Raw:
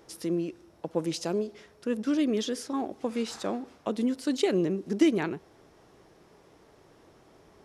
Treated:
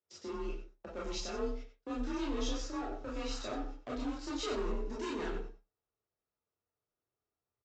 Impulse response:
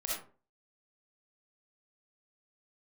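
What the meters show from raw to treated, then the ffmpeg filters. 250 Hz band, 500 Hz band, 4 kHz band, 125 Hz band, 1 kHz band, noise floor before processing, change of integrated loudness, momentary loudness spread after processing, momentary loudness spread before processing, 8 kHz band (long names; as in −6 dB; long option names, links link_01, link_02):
−12.0 dB, −9.5 dB, −5.0 dB, −9.5 dB, −4.0 dB, −59 dBFS, −9.5 dB, 8 LU, 10 LU, −6.0 dB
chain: -filter_complex "[0:a]agate=range=-32dB:threshold=-44dB:ratio=16:detection=peak,aresample=16000,asoftclip=type=hard:threshold=-28dB,aresample=44100,asplit=2[link_01][link_02];[link_02]adelay=93.29,volume=-10dB,highshelf=frequency=4000:gain=-2.1[link_03];[link_01][link_03]amix=inputs=2:normalize=0[link_04];[1:a]atrim=start_sample=2205,asetrate=88200,aresample=44100[link_05];[link_04][link_05]afir=irnorm=-1:irlink=0,afreqshift=33,volume=-1dB"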